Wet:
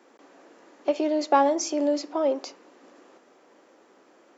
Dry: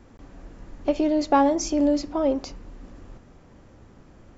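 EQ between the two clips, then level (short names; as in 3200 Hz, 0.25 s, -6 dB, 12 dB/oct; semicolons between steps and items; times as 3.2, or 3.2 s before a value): HPF 330 Hz 24 dB/oct; 0.0 dB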